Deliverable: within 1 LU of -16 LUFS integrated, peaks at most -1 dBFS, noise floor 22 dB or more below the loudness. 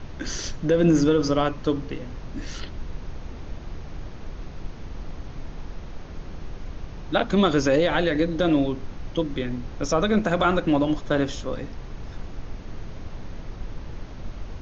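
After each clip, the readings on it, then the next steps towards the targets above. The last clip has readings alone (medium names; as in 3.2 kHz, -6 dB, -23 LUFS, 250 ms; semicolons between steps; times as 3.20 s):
noise floor -38 dBFS; noise floor target -46 dBFS; loudness -23.5 LUFS; peak level -9.0 dBFS; loudness target -16.0 LUFS
-> noise print and reduce 8 dB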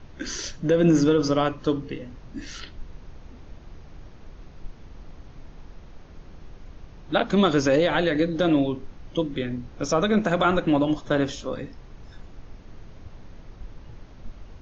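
noise floor -46 dBFS; loudness -23.5 LUFS; peak level -9.0 dBFS; loudness target -16.0 LUFS
-> trim +7.5 dB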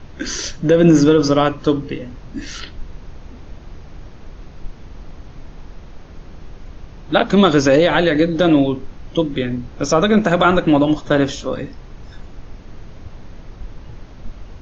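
loudness -16.0 LUFS; peak level -1.5 dBFS; noise floor -39 dBFS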